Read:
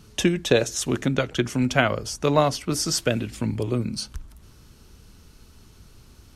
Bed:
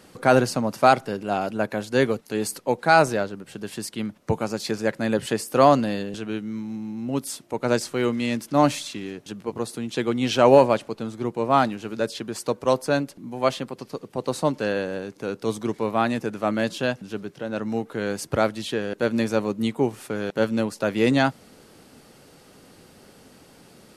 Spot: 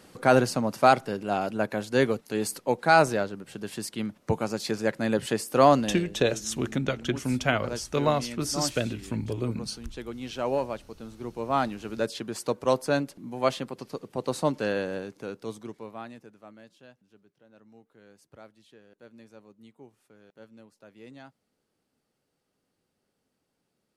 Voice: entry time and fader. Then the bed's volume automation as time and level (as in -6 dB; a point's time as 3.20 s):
5.70 s, -5.0 dB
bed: 5.77 s -2.5 dB
6.21 s -13.5 dB
10.80 s -13.5 dB
11.98 s -3 dB
14.98 s -3 dB
16.68 s -28 dB